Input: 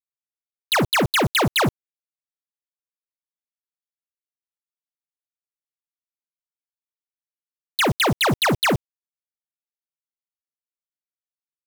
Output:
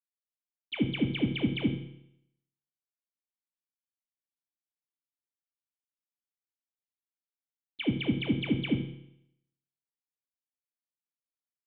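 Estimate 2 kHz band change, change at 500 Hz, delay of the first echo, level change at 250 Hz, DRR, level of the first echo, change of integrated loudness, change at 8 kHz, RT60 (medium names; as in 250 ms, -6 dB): -16.0 dB, -15.0 dB, 73 ms, -3.5 dB, 4.0 dB, -13.0 dB, -11.0 dB, under -40 dB, 0.75 s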